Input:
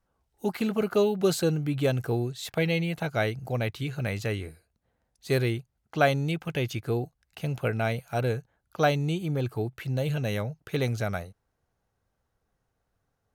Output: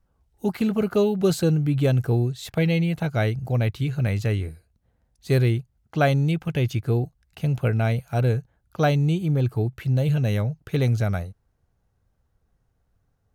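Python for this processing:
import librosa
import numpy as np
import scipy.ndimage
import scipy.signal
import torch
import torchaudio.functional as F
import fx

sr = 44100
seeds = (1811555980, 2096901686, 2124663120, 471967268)

y = fx.low_shelf(x, sr, hz=200.0, db=12.0)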